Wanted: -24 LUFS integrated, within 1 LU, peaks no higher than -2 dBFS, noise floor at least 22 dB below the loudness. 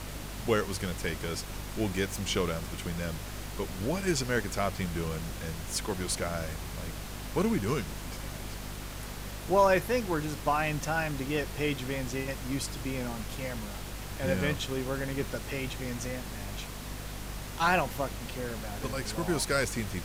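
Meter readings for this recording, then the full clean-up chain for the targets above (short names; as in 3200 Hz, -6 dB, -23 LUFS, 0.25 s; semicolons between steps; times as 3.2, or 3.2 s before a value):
hum 50 Hz; harmonics up to 250 Hz; hum level -39 dBFS; noise floor -40 dBFS; noise floor target -55 dBFS; loudness -32.5 LUFS; peak -11.5 dBFS; loudness target -24.0 LUFS
-> notches 50/100/150/200/250 Hz; noise print and reduce 15 dB; gain +8.5 dB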